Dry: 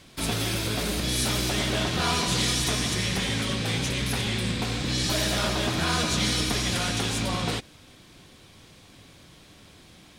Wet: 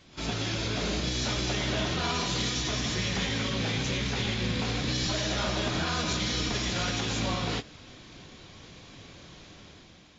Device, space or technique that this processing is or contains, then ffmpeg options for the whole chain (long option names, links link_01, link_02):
low-bitrate web radio: -af "dynaudnorm=framelen=190:gausssize=7:maxgain=7dB,alimiter=limit=-15.5dB:level=0:latency=1:release=167,volume=-5dB" -ar 16000 -c:a aac -b:a 24k